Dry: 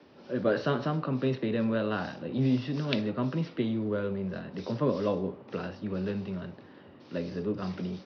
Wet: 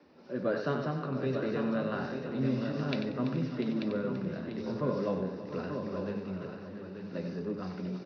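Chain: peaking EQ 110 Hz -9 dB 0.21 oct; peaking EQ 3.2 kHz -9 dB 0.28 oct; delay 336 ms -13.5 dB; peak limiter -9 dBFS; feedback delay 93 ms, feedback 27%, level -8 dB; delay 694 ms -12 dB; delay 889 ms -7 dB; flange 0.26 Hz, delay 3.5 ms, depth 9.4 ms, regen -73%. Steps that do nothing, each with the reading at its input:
peak limiter -9 dBFS: peak at its input -13.0 dBFS

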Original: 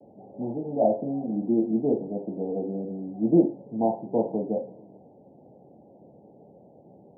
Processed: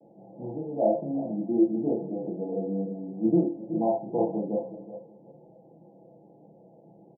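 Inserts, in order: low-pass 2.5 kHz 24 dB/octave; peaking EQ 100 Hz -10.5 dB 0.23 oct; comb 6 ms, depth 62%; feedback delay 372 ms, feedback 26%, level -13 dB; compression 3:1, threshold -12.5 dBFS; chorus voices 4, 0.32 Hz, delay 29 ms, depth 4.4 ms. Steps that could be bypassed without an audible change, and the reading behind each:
low-pass 2.5 kHz: input has nothing above 960 Hz

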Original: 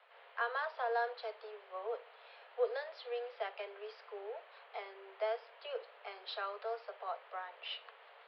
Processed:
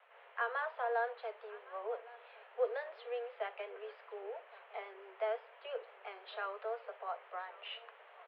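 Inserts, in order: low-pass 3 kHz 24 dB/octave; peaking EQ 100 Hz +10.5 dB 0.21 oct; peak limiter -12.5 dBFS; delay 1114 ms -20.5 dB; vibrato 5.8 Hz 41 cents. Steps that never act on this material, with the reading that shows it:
peaking EQ 100 Hz: input has nothing below 360 Hz; peak limiter -12.5 dBFS: peak at its input -22.0 dBFS

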